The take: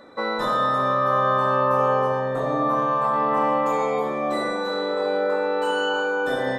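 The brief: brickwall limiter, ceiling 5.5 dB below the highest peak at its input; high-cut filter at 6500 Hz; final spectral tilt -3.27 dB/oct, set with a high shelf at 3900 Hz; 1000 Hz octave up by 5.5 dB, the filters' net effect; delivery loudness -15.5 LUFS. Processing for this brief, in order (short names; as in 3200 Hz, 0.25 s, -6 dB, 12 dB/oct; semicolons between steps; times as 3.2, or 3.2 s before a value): LPF 6500 Hz; bell 1000 Hz +7.5 dB; high shelf 3900 Hz -7 dB; gain +4 dB; limiter -6 dBFS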